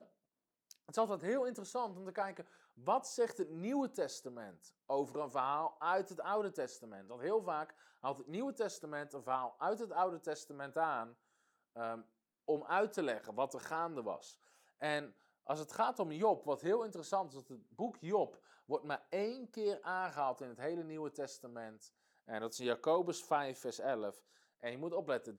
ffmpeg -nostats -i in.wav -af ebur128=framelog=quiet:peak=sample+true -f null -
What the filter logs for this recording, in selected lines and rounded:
Integrated loudness:
  I:         -39.3 LUFS
  Threshold: -49.9 LUFS
Loudness range:
  LRA:         2.6 LU
  Threshold: -59.9 LUFS
  LRA low:   -41.2 LUFS
  LRA high:  -38.6 LUFS
Sample peak:
  Peak:      -21.3 dBFS
True peak:
  Peak:      -21.3 dBFS